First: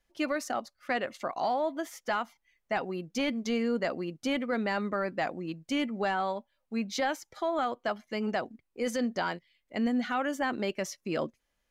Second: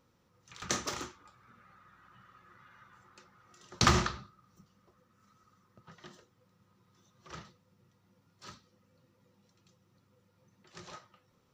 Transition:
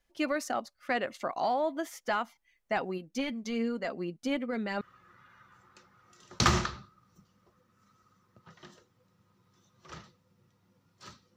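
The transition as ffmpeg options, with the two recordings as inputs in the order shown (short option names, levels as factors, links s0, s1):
-filter_complex "[0:a]asplit=3[s0][s1][s2];[s0]afade=t=out:st=2.97:d=0.02[s3];[s1]flanger=delay=3.2:depth=2.6:regen=45:speed=1.6:shape=triangular,afade=t=in:st=2.97:d=0.02,afade=t=out:st=4.81:d=0.02[s4];[s2]afade=t=in:st=4.81:d=0.02[s5];[s3][s4][s5]amix=inputs=3:normalize=0,apad=whole_dur=11.36,atrim=end=11.36,atrim=end=4.812[s6];[1:a]atrim=start=2.218:end=8.77[s7];[s6][s7]acrossfade=d=0.004:c1=hsin:c2=hsin"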